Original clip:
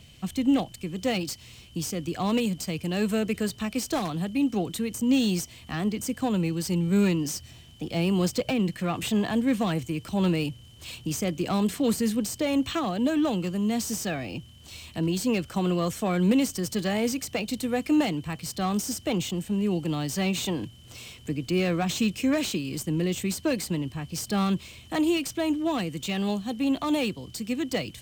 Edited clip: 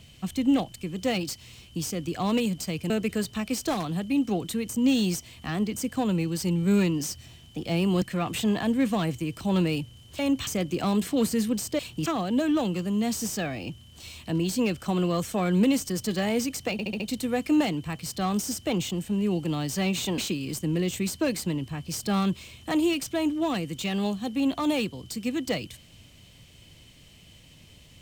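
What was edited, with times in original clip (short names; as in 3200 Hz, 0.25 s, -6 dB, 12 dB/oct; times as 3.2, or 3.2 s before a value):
2.9–3.15 cut
8.27–8.7 cut
10.87–11.14 swap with 12.46–12.74
17.4 stutter 0.07 s, 5 plays
20.58–22.42 cut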